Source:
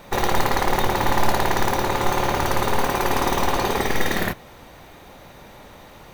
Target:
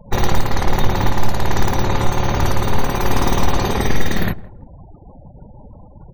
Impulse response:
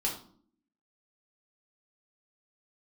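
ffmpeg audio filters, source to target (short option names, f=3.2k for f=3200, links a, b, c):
-filter_complex "[0:a]afftfilt=real='re*gte(hypot(re,im),0.0178)':imag='im*gte(hypot(re,im),0.0178)':win_size=1024:overlap=0.75,bass=f=250:g=11,treble=f=4k:g=5,alimiter=limit=-3dB:level=0:latency=1:release=394,equalizer=f=11k:t=o:w=0.22:g=-7,asplit=2[a][b];[b]adelay=165,lowpass=f=820:p=1,volume=-18dB,asplit=2[c][d];[d]adelay=165,lowpass=f=820:p=1,volume=0.3,asplit=2[e][f];[f]adelay=165,lowpass=f=820:p=1,volume=0.3[g];[a][c][e][g]amix=inputs=4:normalize=0"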